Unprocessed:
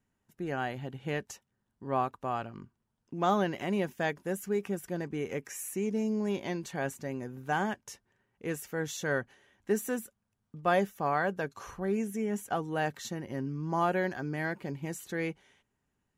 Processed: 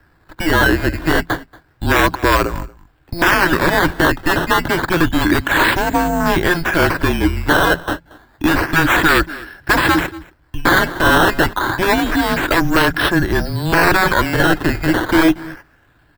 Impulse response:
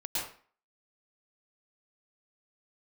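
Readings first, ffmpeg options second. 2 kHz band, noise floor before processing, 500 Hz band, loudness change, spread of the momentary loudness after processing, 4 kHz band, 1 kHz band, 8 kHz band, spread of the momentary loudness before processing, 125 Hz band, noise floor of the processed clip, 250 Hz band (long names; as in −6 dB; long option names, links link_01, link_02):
+23.5 dB, −81 dBFS, +13.5 dB, +18.0 dB, 10 LU, +25.0 dB, +17.0 dB, +14.5 dB, 12 LU, +16.5 dB, −55 dBFS, +17.0 dB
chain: -af "acrusher=samples=12:mix=1:aa=0.000001:lfo=1:lforange=12:lforate=0.29,aeval=exprs='0.188*(cos(1*acos(clip(val(0)/0.188,-1,1)))-cos(1*PI/2))+0.0266*(cos(3*acos(clip(val(0)/0.188,-1,1)))-cos(3*PI/2))+0.0841*(cos(7*acos(clip(val(0)/0.188,-1,1)))-cos(7*PI/2))':channel_layout=same,acontrast=84,aecho=1:1:232:0.0668,afftfilt=real='re*lt(hypot(re,im),0.562)':imag='im*lt(hypot(re,im),0.562)':win_size=1024:overlap=0.75,afreqshift=-170,equalizer=frequency=200:width_type=o:width=0.33:gain=-6,equalizer=frequency=315:width_type=o:width=0.33:gain=11,equalizer=frequency=1000:width_type=o:width=0.33:gain=4,equalizer=frequency=1600:width_type=o:width=0.33:gain=11,equalizer=frequency=6300:width_type=o:width=0.33:gain=-9,equalizer=frequency=10000:width_type=o:width=0.33:gain=-9,alimiter=level_in=10dB:limit=-1dB:release=50:level=0:latency=1,volume=-1dB"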